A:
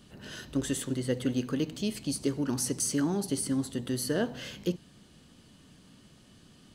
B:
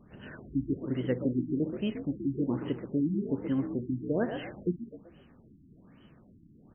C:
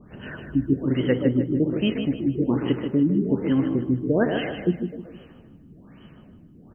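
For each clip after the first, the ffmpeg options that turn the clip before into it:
-filter_complex "[0:a]asplit=5[a][b][c][d][e];[b]adelay=127,afreqshift=53,volume=-9dB[f];[c]adelay=254,afreqshift=106,volume=-18.1dB[g];[d]adelay=381,afreqshift=159,volume=-27.2dB[h];[e]adelay=508,afreqshift=212,volume=-36.4dB[i];[a][f][g][h][i]amix=inputs=5:normalize=0,afftfilt=real='re*lt(b*sr/1024,340*pow(3300/340,0.5+0.5*sin(2*PI*1.2*pts/sr)))':imag='im*lt(b*sr/1024,340*pow(3300/340,0.5+0.5*sin(2*PI*1.2*pts/sr)))':win_size=1024:overlap=0.75"
-af "aecho=1:1:154|308|462|616:0.398|0.143|0.0516|0.0186,adynamicequalizer=threshold=0.00251:dfrequency=1700:dqfactor=0.7:tfrequency=1700:tqfactor=0.7:attack=5:release=100:ratio=0.375:range=2.5:mode=boostabove:tftype=highshelf,volume=8dB"

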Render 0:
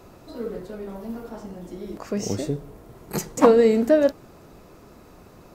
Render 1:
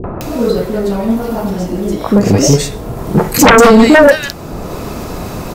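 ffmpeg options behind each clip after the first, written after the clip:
-filter_complex "[0:a]acompressor=mode=upward:threshold=-33dB:ratio=2.5,acrossover=split=380|1600[a][b][c];[b]adelay=40[d];[c]adelay=210[e];[a][d][e]amix=inputs=3:normalize=0,aeval=exprs='0.668*sin(PI/2*5.01*val(0)/0.668)':c=same,volume=2.5dB"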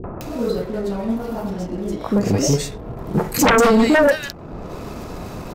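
-af "anlmdn=39.8,volume=-8.5dB"

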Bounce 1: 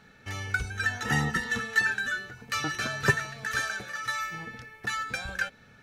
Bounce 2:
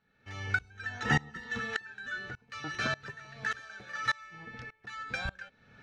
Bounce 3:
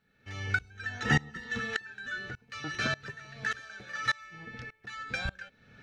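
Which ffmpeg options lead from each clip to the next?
-af "alimiter=limit=-17dB:level=0:latency=1:release=477,lowpass=4.7k,aeval=exprs='val(0)*pow(10,-25*if(lt(mod(-1.7*n/s,1),2*abs(-1.7)/1000),1-mod(-1.7*n/s,1)/(2*abs(-1.7)/1000),(mod(-1.7*n/s,1)-2*abs(-1.7)/1000)/(1-2*abs(-1.7)/1000))/20)':c=same,volume=4dB"
-af "equalizer=f=950:t=o:w=1:g=-5.5,volume=2.5dB"

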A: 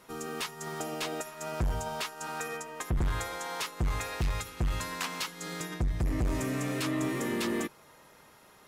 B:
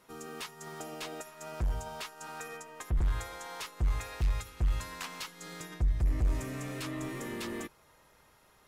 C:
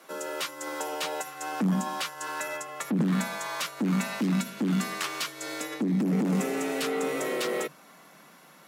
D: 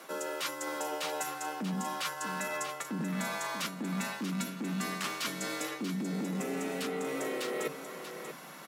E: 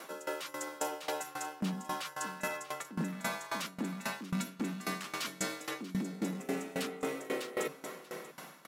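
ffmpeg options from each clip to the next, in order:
-af "asubboost=boost=3:cutoff=99,volume=-6dB"
-af "aeval=exprs='0.1*sin(PI/2*2.24*val(0)/0.1)':c=same,afreqshift=140,volume=-1.5dB"
-af "areverse,acompressor=threshold=-38dB:ratio=10,areverse,aecho=1:1:637:0.335,volume=5.5dB"
-af "aeval=exprs='val(0)*pow(10,-19*if(lt(mod(3.7*n/s,1),2*abs(3.7)/1000),1-mod(3.7*n/s,1)/(2*abs(3.7)/1000),(mod(3.7*n/s,1)-2*abs(3.7)/1000)/(1-2*abs(3.7)/1000))/20)':c=same,volume=4dB"

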